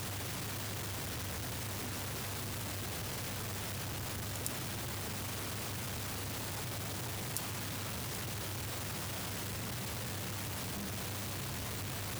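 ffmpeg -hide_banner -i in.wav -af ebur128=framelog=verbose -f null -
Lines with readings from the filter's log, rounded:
Integrated loudness:
  I:         -38.5 LUFS
  Threshold: -48.5 LUFS
Loudness range:
  LRA:         0.2 LU
  Threshold: -58.5 LUFS
  LRA low:   -38.6 LUFS
  LRA high:  -38.4 LUFS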